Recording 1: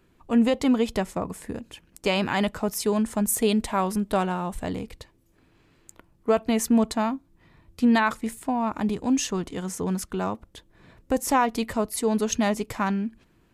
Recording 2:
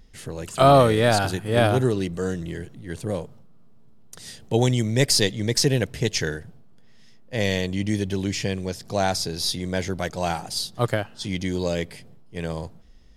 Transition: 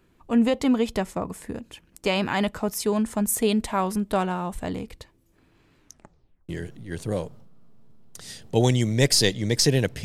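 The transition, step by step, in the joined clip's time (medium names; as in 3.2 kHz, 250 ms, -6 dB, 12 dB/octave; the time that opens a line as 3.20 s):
recording 1
5.77 s: tape stop 0.72 s
6.49 s: go over to recording 2 from 2.47 s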